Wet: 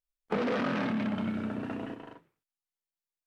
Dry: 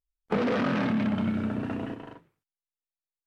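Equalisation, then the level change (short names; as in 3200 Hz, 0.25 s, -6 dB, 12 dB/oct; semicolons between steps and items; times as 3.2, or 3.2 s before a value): bell 67 Hz -7.5 dB 2.4 oct; -2.5 dB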